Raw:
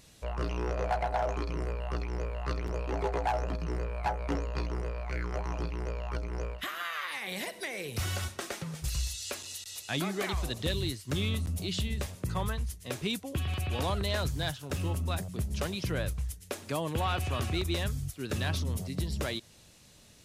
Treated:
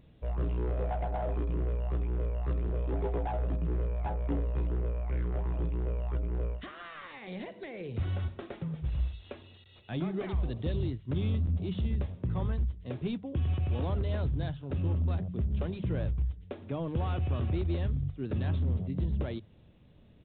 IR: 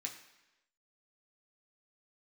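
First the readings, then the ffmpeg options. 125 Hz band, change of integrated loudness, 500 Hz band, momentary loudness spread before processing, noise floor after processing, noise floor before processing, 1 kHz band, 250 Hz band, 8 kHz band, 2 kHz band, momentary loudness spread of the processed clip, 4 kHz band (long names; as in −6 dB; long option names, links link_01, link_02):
+3.0 dB, +0.5 dB, −2.5 dB, 6 LU, −57 dBFS, −57 dBFS, −7.0 dB, +1.0 dB, below −40 dB, −11.0 dB, 8 LU, −14.5 dB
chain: -filter_complex "[0:a]aemphasis=mode=production:type=cd,asplit=2[link_01][link_02];[link_02]aeval=exprs='(mod(21.1*val(0)+1,2)-1)/21.1':channel_layout=same,volume=-11.5dB[link_03];[link_01][link_03]amix=inputs=2:normalize=0,tiltshelf=frequency=780:gain=9.5,bandreject=frequency=50:width_type=h:width=6,bandreject=frequency=100:width_type=h:width=6,bandreject=frequency=150:width_type=h:width=6,bandreject=frequency=200:width_type=h:width=6,aresample=8000,aresample=44100,volume=-6.5dB"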